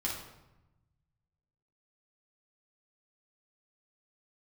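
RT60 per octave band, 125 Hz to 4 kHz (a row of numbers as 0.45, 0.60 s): 2.0, 1.3, 0.95, 0.95, 0.80, 0.65 s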